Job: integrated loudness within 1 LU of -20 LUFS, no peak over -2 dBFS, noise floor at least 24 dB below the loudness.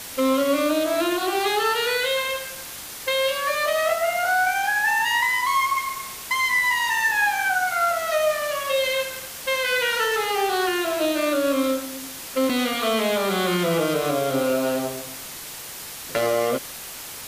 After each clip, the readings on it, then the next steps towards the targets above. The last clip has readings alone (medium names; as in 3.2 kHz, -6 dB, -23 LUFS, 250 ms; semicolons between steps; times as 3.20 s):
noise floor -37 dBFS; noise floor target -46 dBFS; loudness -22.0 LUFS; peak level -10.0 dBFS; loudness target -20.0 LUFS
-> noise print and reduce 9 dB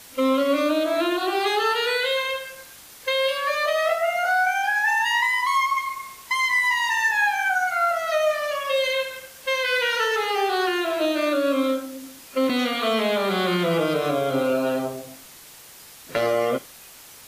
noise floor -46 dBFS; noise floor target -47 dBFS
-> noise print and reduce 6 dB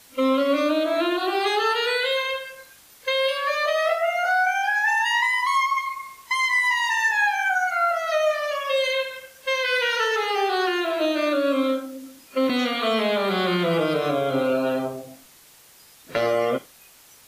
noise floor -51 dBFS; loudness -22.5 LUFS; peak level -10.0 dBFS; loudness target -20.0 LUFS
-> trim +2.5 dB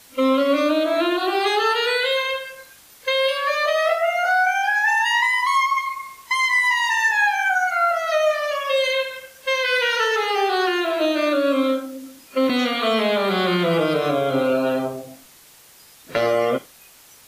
loudness -20.0 LUFS; peak level -7.5 dBFS; noise floor -49 dBFS